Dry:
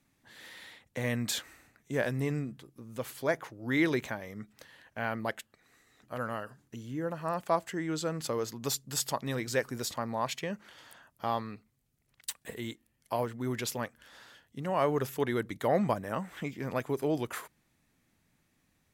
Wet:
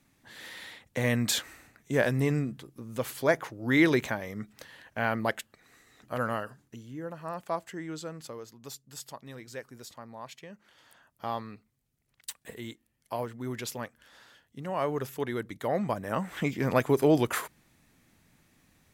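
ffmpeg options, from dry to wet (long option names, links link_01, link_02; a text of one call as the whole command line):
ffmpeg -i in.wav -af "volume=24dB,afade=type=out:start_time=6.32:duration=0.53:silence=0.354813,afade=type=out:start_time=7.83:duration=0.62:silence=0.446684,afade=type=in:start_time=10.52:duration=0.74:silence=0.354813,afade=type=in:start_time=15.88:duration=0.64:silence=0.316228" out.wav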